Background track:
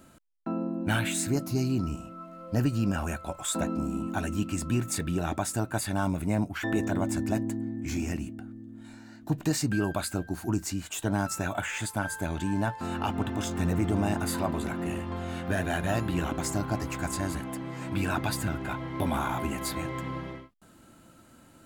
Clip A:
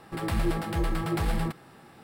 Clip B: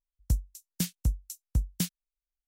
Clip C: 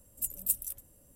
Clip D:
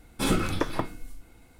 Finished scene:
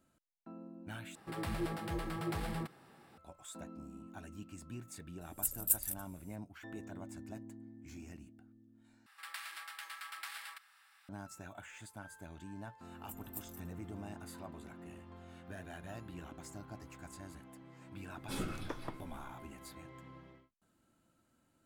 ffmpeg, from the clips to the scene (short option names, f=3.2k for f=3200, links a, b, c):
-filter_complex "[1:a]asplit=2[a][b];[3:a]asplit=2[c][d];[0:a]volume=-19dB[e];[a]highpass=f=88:p=1[f];[b]highpass=f=1.3k:w=0.5412,highpass=f=1.3k:w=1.3066[g];[d]equalizer=f=9.8k:w=1.4:g=-10[h];[e]asplit=3[i][j][k];[i]atrim=end=1.154[l];[f]atrim=end=2.03,asetpts=PTS-STARTPTS,volume=-8.5dB[m];[j]atrim=start=3.176:end=9.064[n];[g]atrim=end=2.03,asetpts=PTS-STARTPTS,volume=-6.5dB[o];[k]atrim=start=11.086[p];[c]atrim=end=1.15,asetpts=PTS-STARTPTS,volume=-1dB,afade=t=in:d=0.004:c=hsin,afade=t=out:st=1.146:d=0.004:c=hsin,adelay=229761S[q];[h]atrim=end=1.15,asetpts=PTS-STARTPTS,volume=-12.5dB,afade=t=in:d=0.004:c=hsin,afade=t=out:st=1.146:d=0.004:c=hsin,adelay=12870[r];[4:a]atrim=end=1.59,asetpts=PTS-STARTPTS,volume=-15dB,afade=t=in:d=0.004:c=hsin,afade=t=out:st=1.586:d=0.004:c=hsin,adelay=18090[s];[l][m]acrossfade=d=0.004:c1=hsin:c2=hsin[t];[t][n]acrossfade=d=0.004:c1=hsin:c2=hsin[u];[u][o]acrossfade=d=0.004:c1=hsin:c2=hsin[v];[v][p]acrossfade=d=0.004:c1=hsin:c2=hsin[w];[w][q][r][s]amix=inputs=4:normalize=0"